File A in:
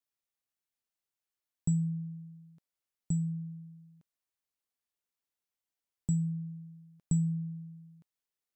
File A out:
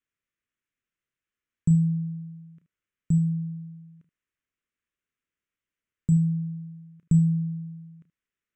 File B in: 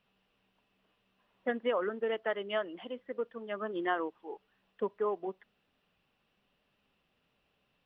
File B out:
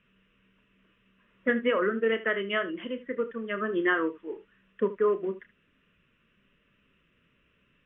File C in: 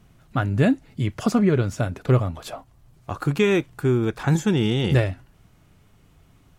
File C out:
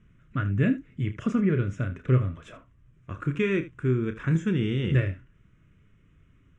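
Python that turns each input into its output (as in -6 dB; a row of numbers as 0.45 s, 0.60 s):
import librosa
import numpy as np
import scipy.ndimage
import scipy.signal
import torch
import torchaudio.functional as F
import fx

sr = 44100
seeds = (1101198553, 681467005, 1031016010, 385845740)

p1 = scipy.signal.sosfilt(scipy.signal.bessel(6, 4900.0, 'lowpass', norm='mag', fs=sr, output='sos'), x)
p2 = fx.fixed_phaser(p1, sr, hz=1900.0, stages=4)
p3 = p2 + fx.room_early_taps(p2, sr, ms=(31, 77), db=(-10.5, -15.5), dry=0)
y = p3 * 10.0 ** (-12 / 20.0) / np.max(np.abs(p3))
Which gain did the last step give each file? +8.0 dB, +10.5 dB, -4.0 dB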